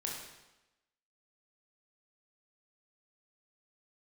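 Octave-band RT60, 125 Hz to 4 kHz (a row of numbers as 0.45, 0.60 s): 0.90, 1.0, 1.0, 1.0, 0.95, 0.90 s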